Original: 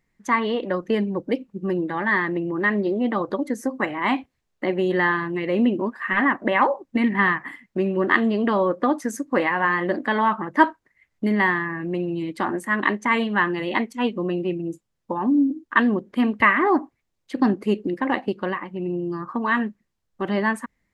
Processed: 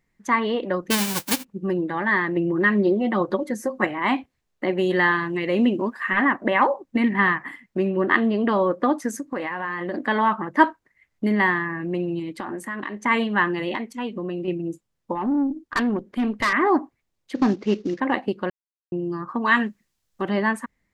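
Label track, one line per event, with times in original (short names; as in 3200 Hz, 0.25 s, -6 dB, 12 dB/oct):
0.900000	1.430000	spectral whitening exponent 0.1
2.360000	3.870000	comb 5.5 ms
4.770000	6.100000	high shelf 3100 Hz +7.5 dB
7.900000	8.490000	air absorption 78 m
9.160000	9.940000	compressor 4:1, threshold -25 dBFS
12.190000	12.970000	compressor 10:1, threshold -26 dBFS
13.750000	14.480000	compressor 3:1, threshold -26 dBFS
15.150000	16.530000	tube stage drive 17 dB, bias 0.25
17.350000	18.000000	CVSD 32 kbps
18.500000	18.920000	mute
19.450000	20.220000	high shelf 2200 Hz +11 dB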